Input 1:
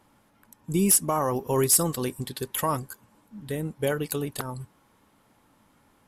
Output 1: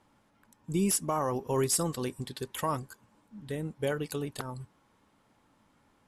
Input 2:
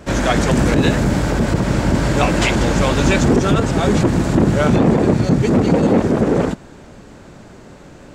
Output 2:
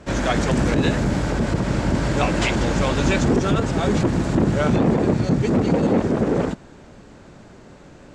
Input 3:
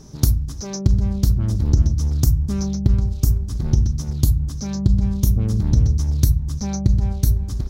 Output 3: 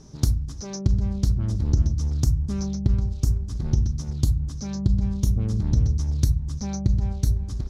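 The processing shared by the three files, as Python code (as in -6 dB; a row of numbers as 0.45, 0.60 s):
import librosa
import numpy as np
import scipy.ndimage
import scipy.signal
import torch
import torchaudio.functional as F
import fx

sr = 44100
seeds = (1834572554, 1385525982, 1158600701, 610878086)

y = scipy.signal.sosfilt(scipy.signal.butter(2, 8600.0, 'lowpass', fs=sr, output='sos'), x)
y = F.gain(torch.from_numpy(y), -4.5).numpy()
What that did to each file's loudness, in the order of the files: -6.5, -4.5, -4.5 LU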